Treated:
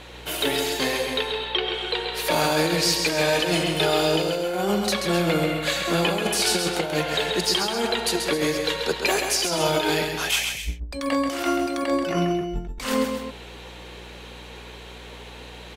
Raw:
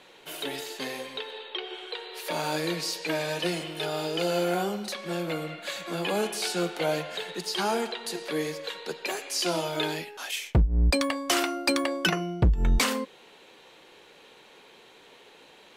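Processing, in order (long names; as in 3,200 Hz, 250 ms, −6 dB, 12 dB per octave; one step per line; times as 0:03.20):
mains hum 60 Hz, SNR 28 dB
compressor whose output falls as the input rises −30 dBFS, ratio −0.5
loudspeakers that aren't time-aligned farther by 46 metres −6 dB, 90 metres −12 dB
level +6.5 dB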